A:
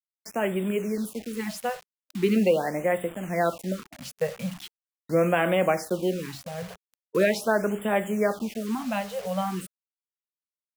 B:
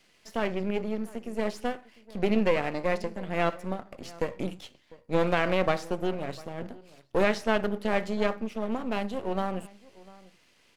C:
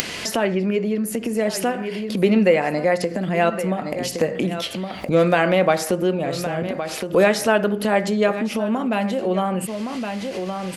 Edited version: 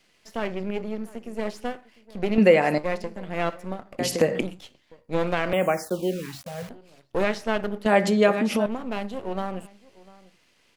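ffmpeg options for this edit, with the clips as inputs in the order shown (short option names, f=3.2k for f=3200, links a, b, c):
-filter_complex "[2:a]asplit=3[a][b][c];[1:a]asplit=5[d][e][f][g][h];[d]atrim=end=2.382[i];[a]atrim=start=2.378:end=2.782[j];[e]atrim=start=2.778:end=3.992[k];[b]atrim=start=3.988:end=4.412[l];[f]atrim=start=4.408:end=5.532[m];[0:a]atrim=start=5.528:end=6.692[n];[g]atrim=start=6.688:end=7.862[o];[c]atrim=start=7.858:end=8.662[p];[h]atrim=start=8.658[q];[i][j]acrossfade=d=0.004:c1=hsin:c2=hsin[r];[r][k]acrossfade=d=0.004:c1=hsin:c2=hsin[s];[s][l]acrossfade=d=0.004:c1=hsin:c2=hsin[t];[t][m]acrossfade=d=0.004:c1=hsin:c2=hsin[u];[u][n]acrossfade=d=0.004:c1=hsin:c2=hsin[v];[v][o]acrossfade=d=0.004:c1=hsin:c2=hsin[w];[w][p]acrossfade=d=0.004:c1=hsin:c2=hsin[x];[x][q]acrossfade=d=0.004:c1=hsin:c2=hsin"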